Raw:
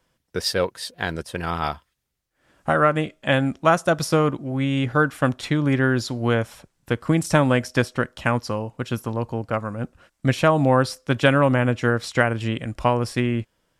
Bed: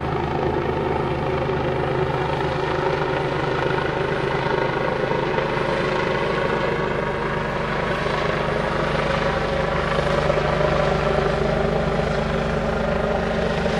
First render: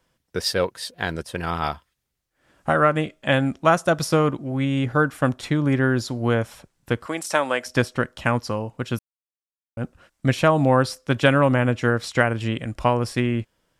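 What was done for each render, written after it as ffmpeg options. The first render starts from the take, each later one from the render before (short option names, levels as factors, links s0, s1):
-filter_complex "[0:a]asettb=1/sr,asplit=3[s0][s1][s2];[s0]atrim=end=4.654[s3];[s1]atrim=start=4.65:end=6.42,asetpts=PTS-STARTPTS,afade=t=in:d=0.004:c=qsin,afade=t=out:st=1.766:d=0.004:c=qsin,equalizer=f=3100:t=o:w=1.8:g=-3[s4];[s2]atrim=start=6.416[s5];[s3][s4]acrossfade=d=0.004:c1=hsin:c2=qsin[s6];[s6][s5]acrossfade=d=0.004:c1=qsin:c2=hsin,asettb=1/sr,asplit=3[s7][s8][s9];[s7]atrim=end=7.064[s10];[s8]atrim=start=7.06:end=7.66,asetpts=PTS-STARTPTS,afade=t=in:d=0.004:c=qsin,afade=t=out:st=0.596:d=0.004:c=qsin,highpass=520[s11];[s9]atrim=start=7.656[s12];[s10][s11]acrossfade=d=0.004:c1=hsin:c2=qsin[s13];[s13][s12]acrossfade=d=0.004:c1=qsin:c2=hsin,asplit=3[s14][s15][s16];[s14]atrim=end=8.99,asetpts=PTS-STARTPTS,afade=t=out:st=8.986:d=0.004:c=hsin[s17];[s15]atrim=start=8.99:end=9.77,asetpts=PTS-STARTPTS,volume=0[s18];[s16]atrim=start=9.77,asetpts=PTS-STARTPTS,afade=t=in:d=0.004:c=hsin[s19];[s17][s18][s19]concat=n=3:v=0:a=1"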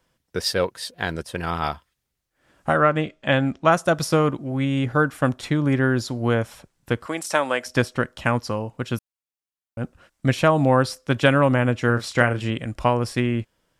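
-filter_complex "[0:a]asettb=1/sr,asplit=3[s0][s1][s2];[s0]atrim=end=2.774[s3];[s1]atrim=start=2.77:end=3.72,asetpts=PTS-STARTPTS,afade=t=in:d=0.004:c=qsin,afade=t=out:st=0.946:d=0.004:c=qsin,lowpass=6000[s4];[s2]atrim=start=3.716[s5];[s3][s4]acrossfade=d=0.004:c1=hsin:c2=qsin[s6];[s6][s5]acrossfade=d=0.004:c1=qsin:c2=hsin,asettb=1/sr,asplit=3[s7][s8][s9];[s7]atrim=end=11.864[s10];[s8]atrim=start=11.86:end=12.5,asetpts=PTS-STARTPTS,afade=t=in:d=0.004:c=qsin,afade=t=out:st=0.636:d=0.004:c=qsin,asplit=2[s11][s12];[s12]adelay=33,volume=0.335[s13];[s11][s13]amix=inputs=2:normalize=0,atrim=end_sample=28224[s14];[s9]atrim=start=12.496[s15];[s10][s14]acrossfade=d=0.004:c1=hsin:c2=qsin[s16];[s16][s15]acrossfade=d=0.004:c1=qsin:c2=hsin"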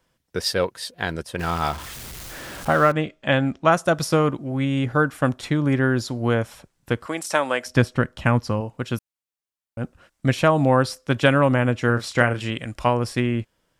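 -filter_complex "[0:a]asettb=1/sr,asplit=3[s0][s1][s2];[s0]atrim=end=1.394[s3];[s1]atrim=start=1.39:end=2.92,asetpts=PTS-STARTPTS,afade=t=in:d=0.004:c=qsin,afade=t=out:st=1.526:d=0.004:c=qsin,aeval=exprs='val(0)+0.5*0.0299*sgn(val(0))':c=same[s4];[s2]atrim=start=2.916[s5];[s3][s4]acrossfade=d=0.004:c1=hsin:c2=qsin[s6];[s6][s5]acrossfade=d=0.004:c1=qsin:c2=hsin,asettb=1/sr,asplit=3[s7][s8][s9];[s7]atrim=end=7.704[s10];[s8]atrim=start=7.7:end=8.61,asetpts=PTS-STARTPTS,afade=t=in:d=0.004:c=qsin,afade=t=out:st=0.906:d=0.004:c=qsin,bass=f=250:g=6,treble=f=4000:g=-3[s11];[s9]atrim=start=8.606[s12];[s10][s11]acrossfade=d=0.004:c1=hsin:c2=qsin[s13];[s13][s12]acrossfade=d=0.004:c1=qsin:c2=hsin,asettb=1/sr,asplit=3[s14][s15][s16];[s14]atrim=end=12.344[s17];[s15]atrim=start=12.34:end=12.87,asetpts=PTS-STARTPTS,afade=t=in:d=0.004:c=qsin,afade=t=out:st=0.526:d=0.004:c=qsin,tiltshelf=f=970:g=-3[s18];[s16]atrim=start=12.866[s19];[s17][s18]acrossfade=d=0.004:c1=hsin:c2=qsin[s20];[s20][s19]acrossfade=d=0.004:c1=qsin:c2=hsin"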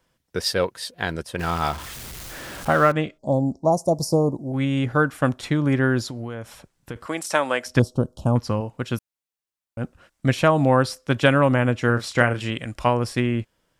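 -filter_complex "[0:a]asplit=3[s0][s1][s2];[s0]afade=t=out:st=3.17:d=0.02[s3];[s1]asuperstop=centerf=2100:order=12:qfactor=0.58,afade=t=in:st=3.17:d=0.02,afade=t=out:st=4.52:d=0.02[s4];[s2]afade=t=in:st=4.52:d=0.02[s5];[s3][s4][s5]amix=inputs=3:normalize=0,asettb=1/sr,asplit=3[s6][s7][s8];[s6]atrim=end=6.094[s9];[s7]atrim=start=6.09:end=6.96,asetpts=PTS-STARTPTS,afade=t=in:d=0.004:c=qsin,afade=t=out:st=0.866:d=0.004:c=qsin,acompressor=threshold=0.0398:ratio=6:attack=3.2:release=140:knee=1:detection=peak[s10];[s8]atrim=start=6.956[s11];[s9][s10]acrossfade=d=0.004:c1=hsin:c2=qsin[s12];[s12][s11]acrossfade=d=0.004:c1=qsin:c2=hsin,asettb=1/sr,asplit=3[s13][s14][s15];[s13]atrim=end=7.794[s16];[s14]atrim=start=7.79:end=8.36,asetpts=PTS-STARTPTS,afade=t=in:d=0.004:c=qsin,afade=t=out:st=0.566:d=0.004:c=qsin,asuperstop=centerf=2000:order=4:qfactor=0.53[s17];[s15]atrim=start=8.356[s18];[s16][s17]acrossfade=d=0.004:c1=hsin:c2=qsin[s19];[s19][s18]acrossfade=d=0.004:c1=qsin:c2=hsin"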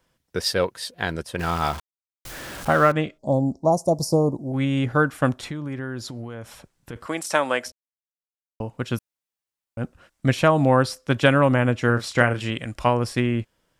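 -filter_complex "[0:a]asettb=1/sr,asplit=3[s0][s1][s2];[s0]atrim=end=5.344[s3];[s1]atrim=start=5.34:end=6.93,asetpts=PTS-STARTPTS,afade=t=in:d=0.004:c=qsin,afade=t=out:st=1.586:d=0.004:c=qsin,acompressor=threshold=0.0316:ratio=3:attack=3.2:release=140:knee=1:detection=peak[s4];[s2]atrim=start=6.926[s5];[s3][s4]acrossfade=d=0.004:c1=hsin:c2=qsin[s6];[s6][s5]acrossfade=d=0.004:c1=qsin:c2=hsin,asplit=5[s7][s8][s9][s10][s11];[s7]atrim=end=1.8,asetpts=PTS-STARTPTS,afade=t=out:st=1.796:d=0.004:c=hsin[s12];[s8]atrim=start=1.8:end=2.25,asetpts=PTS-STARTPTS,volume=0[s13];[s9]atrim=start=2.25:end=7.72,asetpts=PTS-STARTPTS,afade=t=in:d=0.004:c=hsin,afade=t=out:st=5.466:d=0.004:c=hsin[s14];[s10]atrim=start=7.72:end=8.6,asetpts=PTS-STARTPTS,volume=0[s15];[s11]atrim=start=8.6,asetpts=PTS-STARTPTS,afade=t=in:d=0.004:c=hsin[s16];[s12][s13][s14][s15][s16]concat=n=5:v=0:a=1"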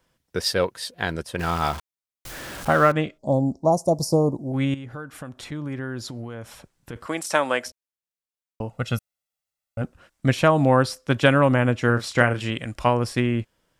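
-filter_complex "[0:a]asettb=1/sr,asplit=3[s0][s1][s2];[s0]atrim=end=4.744[s3];[s1]atrim=start=4.74:end=5.52,asetpts=PTS-STARTPTS,afade=t=in:d=0.004:c=qsin,afade=t=out:st=0.776:d=0.004:c=qsin,acompressor=threshold=0.0178:ratio=4:attack=3.2:release=140:knee=1:detection=peak[s4];[s2]atrim=start=5.516[s5];[s3][s4]acrossfade=d=0.004:c1=hsin:c2=qsin[s6];[s6][s5]acrossfade=d=0.004:c1=qsin:c2=hsin,asettb=1/sr,asplit=3[s7][s8][s9];[s7]atrim=end=8.704[s10];[s8]atrim=start=8.7:end=9.82,asetpts=PTS-STARTPTS,afade=t=in:d=0.004:c=qsin,afade=t=out:st=1.116:d=0.004:c=qsin,aecho=1:1:1.5:0.65,atrim=end_sample=49392[s11];[s9]atrim=start=9.816[s12];[s10][s11]acrossfade=d=0.004:c1=hsin:c2=qsin[s13];[s13][s12]acrossfade=d=0.004:c1=qsin:c2=hsin"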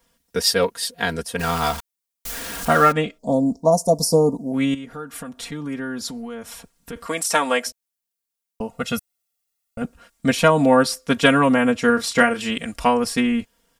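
-af "highshelf=f=5600:g=9,aecho=1:1:4.3:0.93"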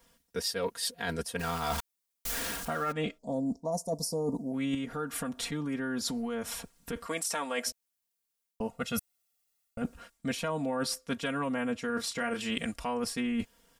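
-af "alimiter=limit=0.299:level=0:latency=1:release=231,areverse,acompressor=threshold=0.0316:ratio=6,areverse"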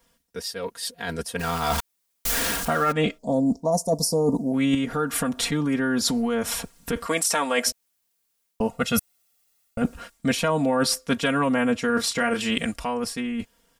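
-af "dynaudnorm=f=270:g=11:m=3.16"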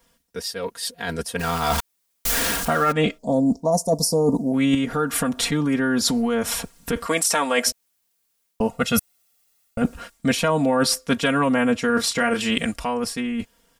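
-af "volume=1.33"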